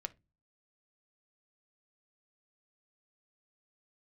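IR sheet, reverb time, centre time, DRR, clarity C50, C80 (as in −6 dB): 0.25 s, 2 ms, 9.0 dB, 22.0 dB, 32.5 dB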